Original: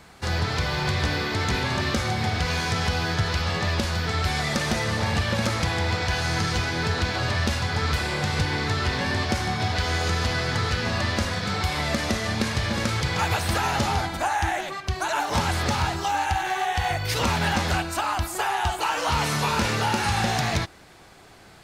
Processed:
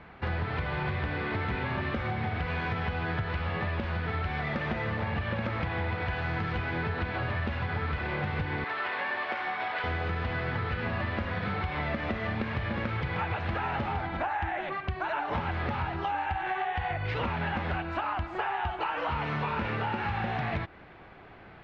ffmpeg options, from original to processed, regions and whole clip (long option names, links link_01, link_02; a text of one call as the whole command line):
ffmpeg -i in.wav -filter_complex "[0:a]asettb=1/sr,asplit=3[link_01][link_02][link_03];[link_01]atrim=end=8.644[link_04];[link_02]atrim=start=8.64:end=9.84,asetpts=PTS-STARTPTS,afade=type=in:duration=0.004:curve=qsin,afade=type=out:start_time=1.196:duration=0.004:curve=qsin,highpass=630,highshelf=frequency=8500:gain=-11.5,asplit=2[link_05][link_06];[link_06]adelay=17,volume=-14dB[link_07];[link_05][link_07]amix=inputs=2:normalize=0,atrim=end_sample=52920[link_08];[link_03]atrim=start=9.836[link_09];[link_04][link_08]acrossfade=duration=0.004:curve1=hsin:curve2=qsin[link_10];[link_10][link_09]acrossfade=duration=0.004:curve1=qsin:curve2=hsin,lowpass=frequency=2700:width=0.5412,lowpass=frequency=2700:width=1.3066,acompressor=threshold=-28dB:ratio=6" out.wav